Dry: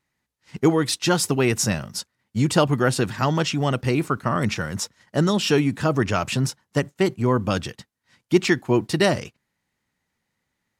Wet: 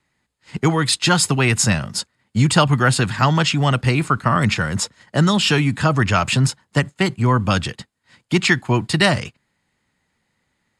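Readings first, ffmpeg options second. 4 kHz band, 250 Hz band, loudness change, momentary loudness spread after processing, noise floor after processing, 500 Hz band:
+7.0 dB, +2.0 dB, +4.0 dB, 7 LU, −71 dBFS, −1.0 dB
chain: -filter_complex "[0:a]lowpass=frequency=10000:width=0.5412,lowpass=frequency=10000:width=1.3066,bandreject=frequency=5800:width=5.8,acrossover=split=220|710|2000[link_01][link_02][link_03][link_04];[link_02]acompressor=threshold=-37dB:ratio=6[link_05];[link_01][link_05][link_03][link_04]amix=inputs=4:normalize=0,volume=7.5dB"

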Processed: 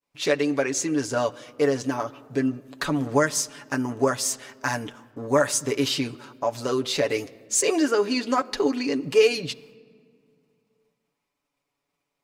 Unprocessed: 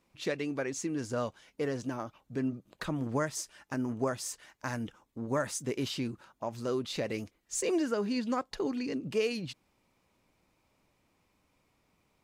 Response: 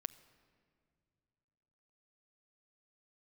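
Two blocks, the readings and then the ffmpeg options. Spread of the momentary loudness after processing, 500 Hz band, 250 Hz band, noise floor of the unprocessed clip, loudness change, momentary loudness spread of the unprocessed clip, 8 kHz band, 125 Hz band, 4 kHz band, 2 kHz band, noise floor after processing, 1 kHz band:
9 LU, +10.5 dB, +7.5 dB, −74 dBFS, +10.0 dB, 8 LU, +12.5 dB, +5.0 dB, +12.0 dB, +11.5 dB, −81 dBFS, +10.5 dB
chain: -filter_complex "[0:a]agate=range=-33dB:threshold=-60dB:ratio=3:detection=peak,bass=frequency=250:gain=-9,treble=frequency=4000:gain=3,asplit=2[link_01][link_02];[1:a]atrim=start_sample=2205,lowpass=5600,adelay=7[link_03];[link_02][link_03]afir=irnorm=-1:irlink=0,volume=0dB[link_04];[link_01][link_04]amix=inputs=2:normalize=0,volume=9dB"

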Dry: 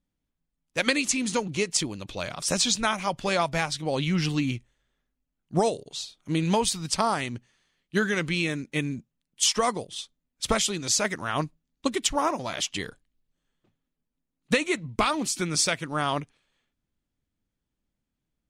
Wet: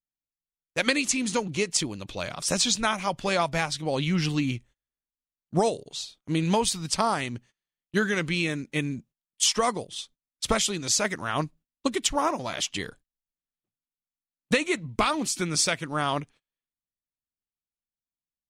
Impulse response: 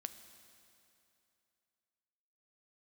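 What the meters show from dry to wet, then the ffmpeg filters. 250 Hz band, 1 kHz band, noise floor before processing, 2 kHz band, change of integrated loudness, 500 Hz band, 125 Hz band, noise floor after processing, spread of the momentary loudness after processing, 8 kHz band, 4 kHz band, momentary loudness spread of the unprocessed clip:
0.0 dB, 0.0 dB, −84 dBFS, 0.0 dB, 0.0 dB, 0.0 dB, 0.0 dB, below −85 dBFS, 11 LU, 0.0 dB, 0.0 dB, 11 LU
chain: -af "agate=range=-23dB:threshold=-50dB:ratio=16:detection=peak"

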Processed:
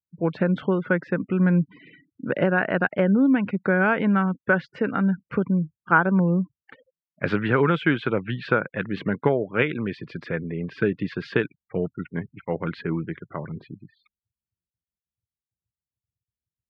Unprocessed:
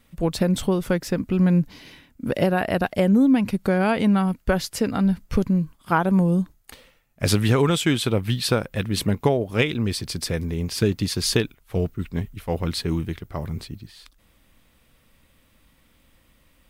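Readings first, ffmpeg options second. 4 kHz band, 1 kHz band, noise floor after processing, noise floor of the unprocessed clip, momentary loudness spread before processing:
−13.0 dB, +0.5 dB, below −85 dBFS, −61 dBFS, 11 LU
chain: -af "afftfilt=real='re*gte(hypot(re,im),0.01)':imag='im*gte(hypot(re,im),0.01)':win_size=1024:overlap=0.75,highpass=frequency=140:width=0.5412,highpass=frequency=140:width=1.3066,equalizer=frequency=230:width_type=q:width=4:gain=-4,equalizer=frequency=730:width_type=q:width=4:gain=-4,equalizer=frequency=1500:width_type=q:width=4:gain=9,lowpass=frequency=2500:width=0.5412,lowpass=frequency=2500:width=1.3066"

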